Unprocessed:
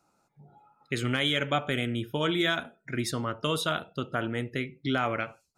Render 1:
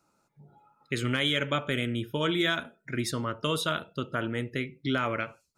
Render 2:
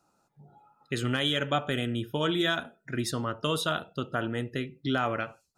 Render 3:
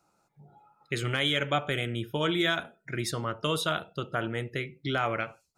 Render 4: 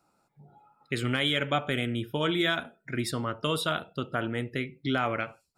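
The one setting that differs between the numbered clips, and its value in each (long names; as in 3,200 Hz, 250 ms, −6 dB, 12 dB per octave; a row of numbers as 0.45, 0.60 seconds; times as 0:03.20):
notch filter, centre frequency: 750, 2,200, 250, 6,300 Hertz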